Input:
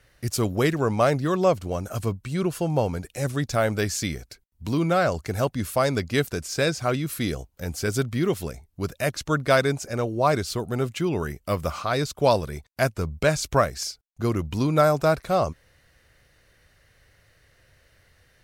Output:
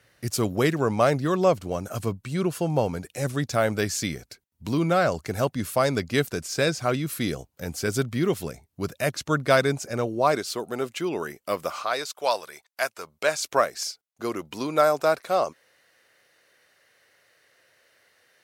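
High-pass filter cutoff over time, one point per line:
0:10.00 110 Hz
0:10.43 300 Hz
0:11.61 300 Hz
0:12.15 770 Hz
0:12.94 770 Hz
0:13.62 360 Hz

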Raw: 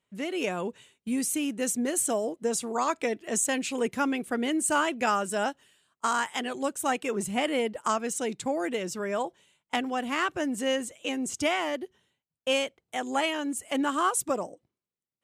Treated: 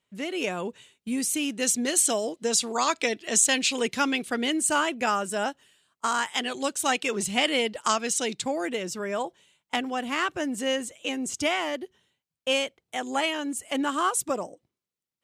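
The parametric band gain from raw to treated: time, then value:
parametric band 4,200 Hz 1.8 octaves
0:01.16 +4 dB
0:01.78 +14 dB
0:04.22 +14 dB
0:04.97 +2.5 dB
0:06.06 +2.5 dB
0:06.66 +13 dB
0:08.23 +13 dB
0:08.79 +3.5 dB

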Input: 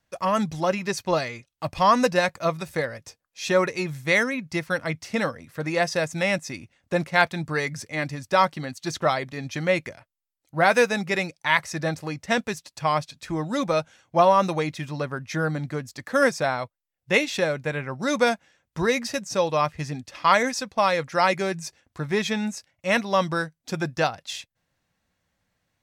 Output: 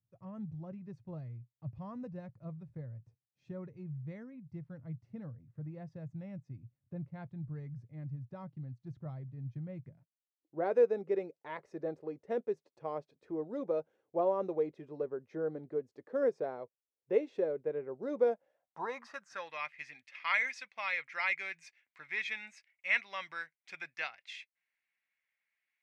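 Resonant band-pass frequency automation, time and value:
resonant band-pass, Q 5.3
0:09.81 120 Hz
0:10.62 420 Hz
0:18.24 420 Hz
0:19.61 2,200 Hz

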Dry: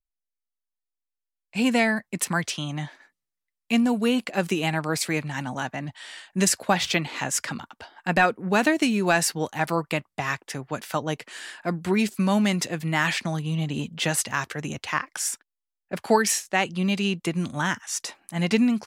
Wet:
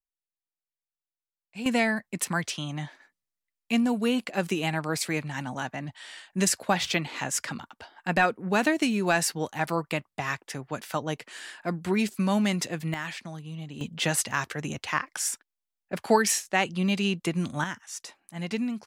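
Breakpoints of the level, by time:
−12 dB
from 0:01.66 −3 dB
from 0:12.94 −11.5 dB
from 0:13.81 −1.5 dB
from 0:17.64 −9 dB

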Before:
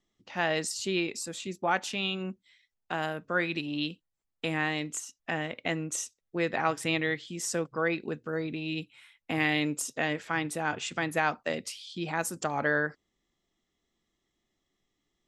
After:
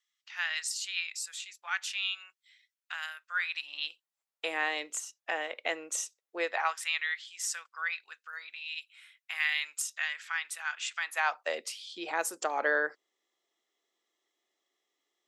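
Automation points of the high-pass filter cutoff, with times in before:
high-pass filter 24 dB per octave
0:03.32 1,400 Hz
0:04.49 450 Hz
0:06.42 450 Hz
0:06.85 1,300 Hz
0:10.97 1,300 Hz
0:11.62 390 Hz

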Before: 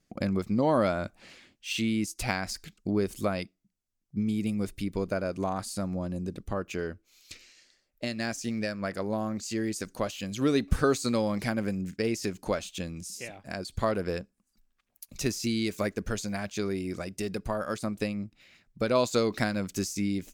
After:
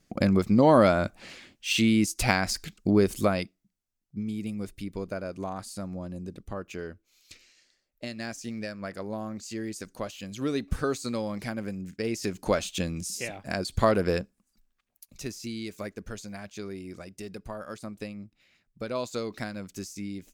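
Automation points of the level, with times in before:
0:03.12 +6 dB
0:04.19 −4 dB
0:11.88 −4 dB
0:12.62 +5.5 dB
0:14.20 +5.5 dB
0:15.22 −7 dB

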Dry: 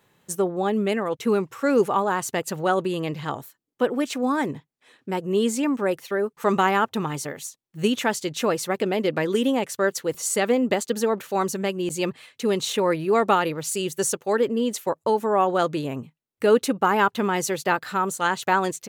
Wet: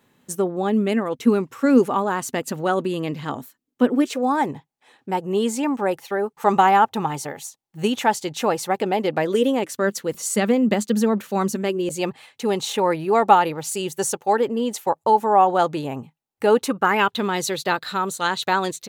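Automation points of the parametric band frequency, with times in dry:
parametric band +12 dB 0.35 octaves
0:03.92 250 Hz
0:04.32 820 Hz
0:09.14 820 Hz
0:09.88 210 Hz
0:11.50 210 Hz
0:12.06 820 Hz
0:16.59 820 Hz
0:17.16 3,900 Hz

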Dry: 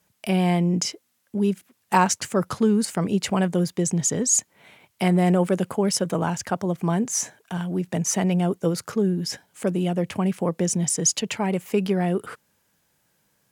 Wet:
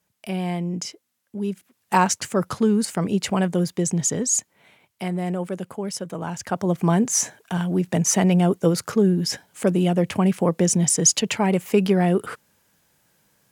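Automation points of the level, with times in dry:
0:01.37 −5.5 dB
0:01.99 +0.5 dB
0:04.08 +0.5 dB
0:05.09 −7 dB
0:06.17 −7 dB
0:06.73 +4 dB

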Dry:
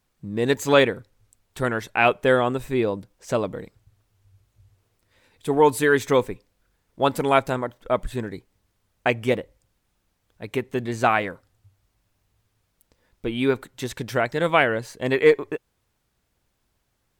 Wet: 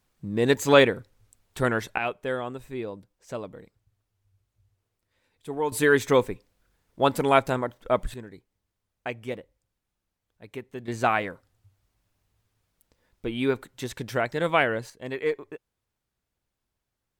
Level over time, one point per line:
0 dB
from 0:01.98 −11 dB
from 0:05.72 −1 dB
from 0:08.14 −11.5 dB
from 0:10.88 −3.5 dB
from 0:14.90 −11 dB

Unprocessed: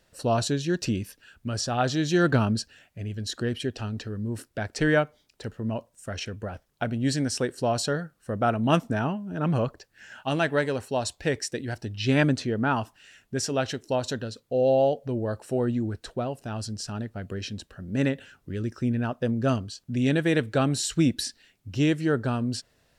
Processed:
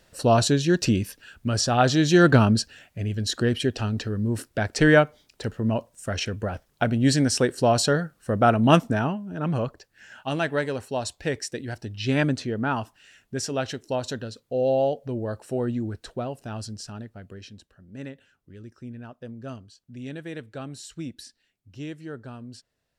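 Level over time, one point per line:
0:08.69 +5.5 dB
0:09.34 −1 dB
0:16.56 −1 dB
0:17.85 −13 dB

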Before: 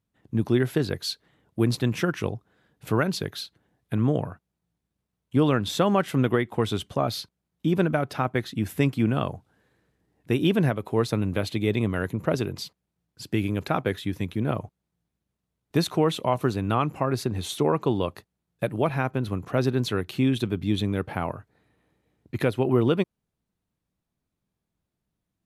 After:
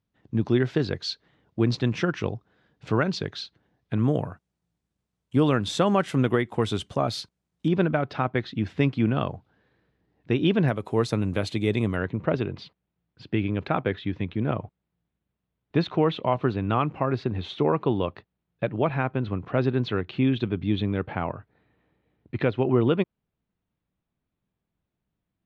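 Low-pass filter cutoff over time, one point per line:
low-pass filter 24 dB per octave
5,700 Hz
from 0:03.99 9,300 Hz
from 0:07.68 4,600 Hz
from 0:10.68 9,400 Hz
from 0:11.96 3,600 Hz

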